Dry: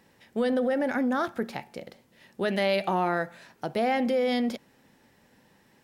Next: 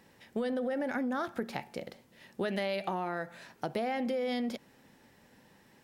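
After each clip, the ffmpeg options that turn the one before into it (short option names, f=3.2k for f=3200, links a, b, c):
-af "acompressor=threshold=-30dB:ratio=6"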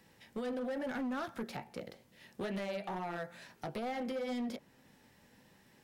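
-filter_complex "[0:a]acrossover=split=230|1800[a][b][c];[b]flanger=delay=15.5:depth=4.3:speed=2.3[d];[c]alimiter=level_in=11dB:limit=-24dB:level=0:latency=1:release=369,volume=-11dB[e];[a][d][e]amix=inputs=3:normalize=0,asoftclip=type=hard:threshold=-32.5dB,volume=-1dB"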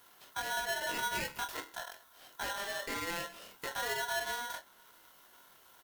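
-filter_complex "[0:a]acrossover=split=440|3100[a][b][c];[c]aexciter=amount=4.4:drive=6.5:freq=11k[d];[a][b][d]amix=inputs=3:normalize=0,aecho=1:1:23|54:0.596|0.158,aeval=exprs='val(0)*sgn(sin(2*PI*1200*n/s))':c=same"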